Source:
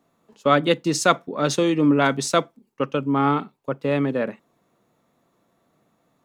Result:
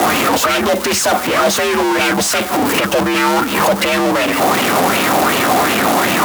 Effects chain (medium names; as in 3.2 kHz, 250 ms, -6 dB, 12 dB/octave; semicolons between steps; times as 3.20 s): jump at every zero crossing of -26.5 dBFS; treble shelf 6 kHz +10 dB; in parallel at +3 dB: peak limiter -11 dBFS, peak gain reduction 10 dB; on the sum: transient shaper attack -12 dB, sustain -8 dB; fuzz box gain 31 dB, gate -35 dBFS; frequency shift +59 Hz; sweeping bell 2.7 Hz 670–2800 Hz +10 dB; trim -2.5 dB